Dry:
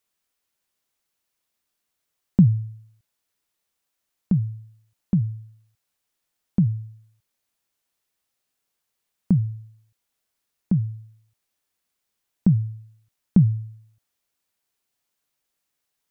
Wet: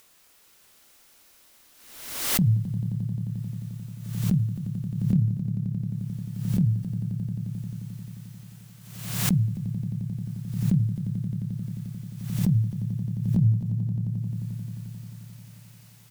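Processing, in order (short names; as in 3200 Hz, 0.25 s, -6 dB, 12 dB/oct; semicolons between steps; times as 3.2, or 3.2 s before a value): upward compressor, threshold -39 dBFS; limiter -15.5 dBFS, peak gain reduction 9.5 dB; doubler 27 ms -7.5 dB; swelling echo 88 ms, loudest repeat 5, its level -11 dB; backwards sustainer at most 56 dB/s; gain -2 dB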